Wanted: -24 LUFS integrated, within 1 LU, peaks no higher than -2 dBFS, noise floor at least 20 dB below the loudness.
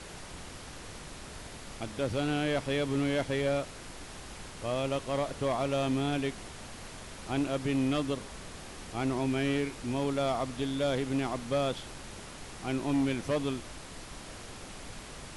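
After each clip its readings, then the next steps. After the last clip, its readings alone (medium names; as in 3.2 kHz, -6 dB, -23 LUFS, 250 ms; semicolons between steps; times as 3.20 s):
noise floor -46 dBFS; noise floor target -52 dBFS; loudness -32.0 LUFS; peak level -21.0 dBFS; loudness target -24.0 LUFS
-> noise print and reduce 6 dB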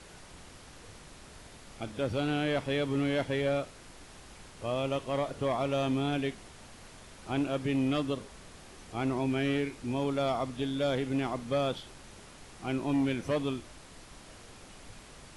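noise floor -52 dBFS; loudness -32.0 LUFS; peak level -21.5 dBFS; loudness target -24.0 LUFS
-> trim +8 dB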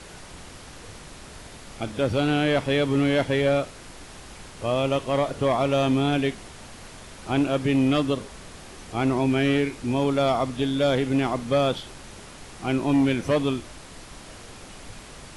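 loudness -24.0 LUFS; peak level -13.5 dBFS; noise floor -44 dBFS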